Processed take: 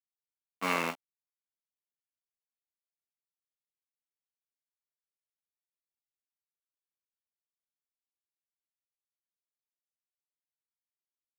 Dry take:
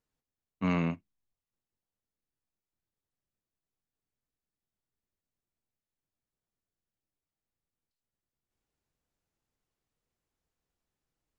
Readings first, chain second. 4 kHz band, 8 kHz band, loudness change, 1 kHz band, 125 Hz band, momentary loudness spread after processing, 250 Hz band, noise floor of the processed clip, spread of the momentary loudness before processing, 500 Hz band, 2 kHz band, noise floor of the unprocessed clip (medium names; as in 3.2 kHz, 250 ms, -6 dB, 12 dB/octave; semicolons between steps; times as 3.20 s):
+9.0 dB, no reading, -1.0 dB, +5.5 dB, -15.0 dB, 10 LU, -9.5 dB, under -85 dBFS, 9 LU, +1.0 dB, +6.5 dB, under -85 dBFS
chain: in parallel at -7.5 dB: sample-and-hold 40×; on the sum: crossover distortion -42 dBFS; high-pass 630 Hz 12 dB/octave; trim +6.5 dB